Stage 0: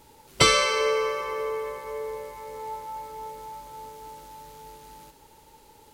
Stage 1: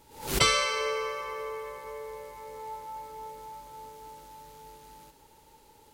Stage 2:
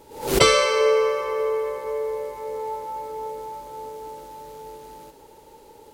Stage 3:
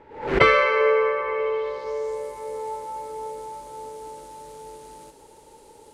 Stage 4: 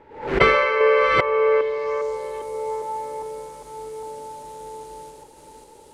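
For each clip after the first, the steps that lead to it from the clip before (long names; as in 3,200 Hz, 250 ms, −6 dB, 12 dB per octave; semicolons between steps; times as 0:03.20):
dynamic equaliser 300 Hz, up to −6 dB, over −40 dBFS, Q 0.92; background raised ahead of every attack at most 110 dB per second; level −4 dB
parametric band 460 Hz +10.5 dB 1.5 octaves; level +4 dB
low-pass filter sweep 1,900 Hz → 9,400 Hz, 0:01.25–0:02.25; level −1.5 dB
delay that plays each chunk backwards 403 ms, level −3 dB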